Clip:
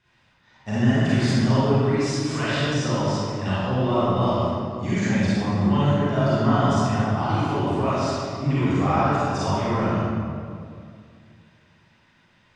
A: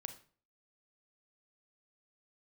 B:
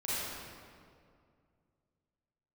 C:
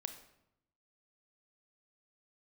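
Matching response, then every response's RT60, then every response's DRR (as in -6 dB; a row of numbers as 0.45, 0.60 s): B; 0.45, 2.3, 0.80 s; 7.5, -11.0, 7.5 dB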